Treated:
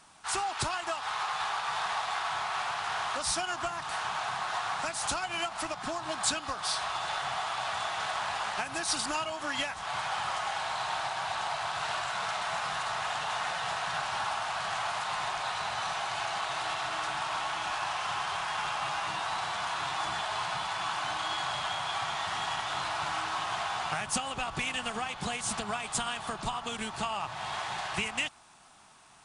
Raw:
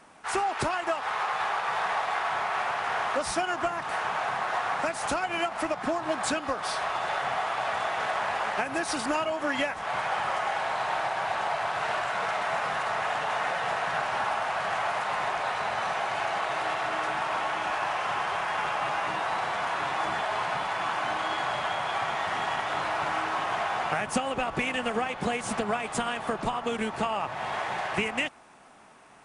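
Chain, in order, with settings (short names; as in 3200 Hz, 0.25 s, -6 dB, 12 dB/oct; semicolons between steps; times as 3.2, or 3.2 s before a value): graphic EQ 250/500/2000/4000/8000 Hz -7/-11/-6/+5/+4 dB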